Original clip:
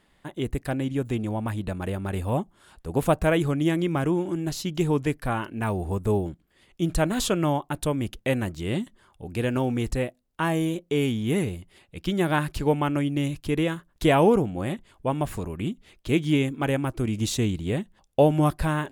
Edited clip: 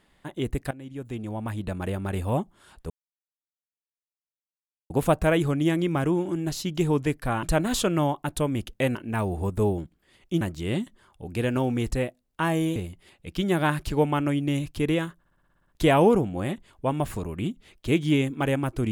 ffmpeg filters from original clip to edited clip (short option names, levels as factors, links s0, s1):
-filter_complex "[0:a]asplit=15[s0][s1][s2][s3][s4][s5][s6][s7][s8][s9][s10][s11][s12][s13][s14];[s0]atrim=end=0.71,asetpts=PTS-STARTPTS,afade=t=out:st=0.706:d=0.004:c=hsin:silence=0.11885[s15];[s1]atrim=start=0.71:end=2.9,asetpts=PTS-STARTPTS,afade=t=in:d=1.09:silence=0.11885,afade=t=out:st=2.186:d=0.004:c=hsin,apad=pad_dur=2[s16];[s2]atrim=start=2.9:end=5.432,asetpts=PTS-STARTPTS,afade=t=in:d=0.004:c=hsin[s17];[s3]atrim=start=6.888:end=8.412[s18];[s4]atrim=start=5.428:end=6.892[s19];[s5]atrim=start=8.408:end=10.762[s20];[s6]atrim=start=11.448:end=13.942[s21];[s7]atrim=start=13.878:end=13.942[s22];[s8]atrim=start=13.878:end=13.942[s23];[s9]atrim=start=13.878:end=13.942[s24];[s10]atrim=start=13.878:end=13.942[s25];[s11]atrim=start=13.878:end=13.942[s26];[s12]atrim=start=13.878:end=13.942[s27];[s13]atrim=start=13.878:end=13.942[s28];[s14]atrim=start=13.878[s29];[s15][s16][s17]concat=n=3:v=0:a=1[s30];[s30][s18]acrossfade=d=0.004:c1=hsin:c2=hsin[s31];[s31][s19]acrossfade=d=0.004:c1=hsin:c2=hsin[s32];[s32][s20]acrossfade=d=0.004:c1=hsin:c2=hsin[s33];[s33][s21]acrossfade=d=0.004:c1=hsin:c2=hsin[s34];[s34][s22]acrossfade=d=0.004:c1=hsin:c2=hsin[s35];[s35][s23]acrossfade=d=0.004:c1=hsin:c2=hsin[s36];[s36][s24]acrossfade=d=0.004:c1=hsin:c2=hsin[s37];[s37][s25]acrossfade=d=0.004:c1=hsin:c2=hsin[s38];[s38][s26]acrossfade=d=0.004:c1=hsin:c2=hsin[s39];[s39][s27]acrossfade=d=0.004:c1=hsin:c2=hsin[s40];[s40][s28]acrossfade=d=0.004:c1=hsin:c2=hsin[s41];[s41][s29]acrossfade=d=0.004:c1=hsin:c2=hsin"